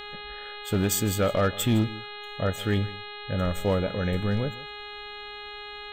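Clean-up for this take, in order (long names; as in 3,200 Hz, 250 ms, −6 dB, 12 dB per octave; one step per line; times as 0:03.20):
clipped peaks rebuilt −16.5 dBFS
hum removal 414.6 Hz, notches 10
echo removal 157 ms −18.5 dB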